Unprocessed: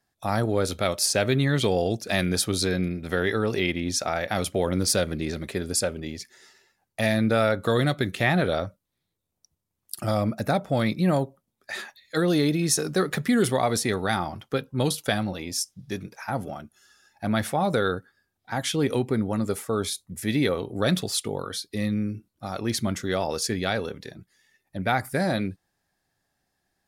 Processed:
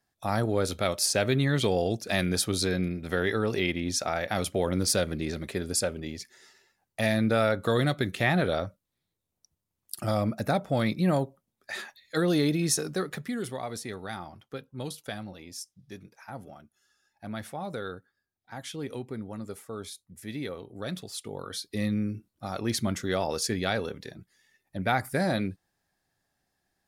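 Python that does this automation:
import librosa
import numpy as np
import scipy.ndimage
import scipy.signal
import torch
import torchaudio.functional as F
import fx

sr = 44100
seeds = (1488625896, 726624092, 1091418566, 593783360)

y = fx.gain(x, sr, db=fx.line((12.68, -2.5), (13.39, -12.0), (21.11, -12.0), (21.66, -2.0)))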